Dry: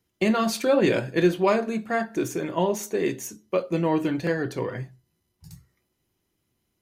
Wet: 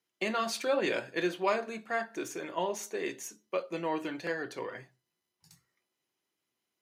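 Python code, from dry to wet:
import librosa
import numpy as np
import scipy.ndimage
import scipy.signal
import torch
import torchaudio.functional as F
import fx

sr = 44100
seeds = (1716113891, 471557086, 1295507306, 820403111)

y = fx.weighting(x, sr, curve='A')
y = y * librosa.db_to_amplitude(-5.5)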